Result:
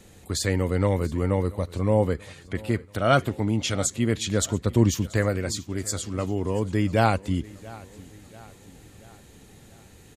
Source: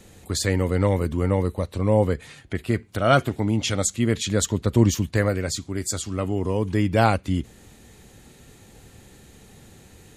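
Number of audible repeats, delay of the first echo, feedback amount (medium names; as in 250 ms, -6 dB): 3, 684 ms, 51%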